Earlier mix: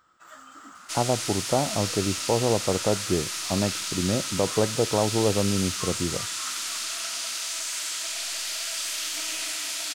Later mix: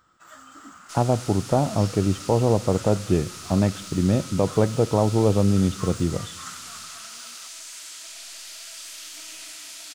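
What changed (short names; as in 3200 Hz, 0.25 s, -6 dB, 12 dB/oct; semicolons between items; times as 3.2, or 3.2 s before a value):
speech: send +9.5 dB; second sound -10.0 dB; master: add tone controls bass +6 dB, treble +2 dB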